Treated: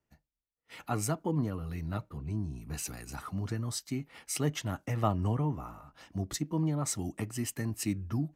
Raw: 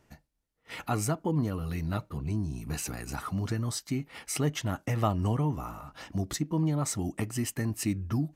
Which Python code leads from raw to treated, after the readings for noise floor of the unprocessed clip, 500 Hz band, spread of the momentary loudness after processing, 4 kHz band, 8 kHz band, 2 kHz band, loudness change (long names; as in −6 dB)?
−74 dBFS, −2.5 dB, 8 LU, −2.5 dB, −1.5 dB, −4.0 dB, −2.5 dB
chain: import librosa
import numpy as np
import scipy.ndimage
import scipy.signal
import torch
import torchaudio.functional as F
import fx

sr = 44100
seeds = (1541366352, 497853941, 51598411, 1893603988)

y = fx.band_widen(x, sr, depth_pct=40)
y = y * 10.0 ** (-3.0 / 20.0)